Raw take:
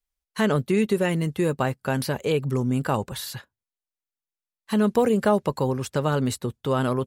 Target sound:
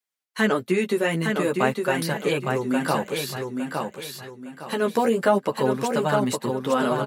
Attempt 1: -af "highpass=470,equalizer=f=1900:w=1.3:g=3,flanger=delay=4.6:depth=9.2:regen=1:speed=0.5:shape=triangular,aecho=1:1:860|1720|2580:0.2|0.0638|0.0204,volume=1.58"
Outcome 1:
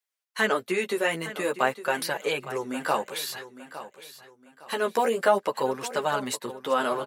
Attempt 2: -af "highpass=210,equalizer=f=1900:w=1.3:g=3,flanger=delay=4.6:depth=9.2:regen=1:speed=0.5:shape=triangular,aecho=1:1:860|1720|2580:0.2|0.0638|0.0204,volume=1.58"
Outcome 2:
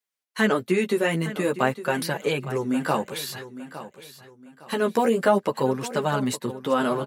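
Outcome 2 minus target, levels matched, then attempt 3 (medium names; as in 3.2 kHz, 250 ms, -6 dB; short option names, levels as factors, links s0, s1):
echo-to-direct -9.5 dB
-af "highpass=210,equalizer=f=1900:w=1.3:g=3,flanger=delay=4.6:depth=9.2:regen=1:speed=0.5:shape=triangular,aecho=1:1:860|1720|2580|3440:0.596|0.191|0.061|0.0195,volume=1.58"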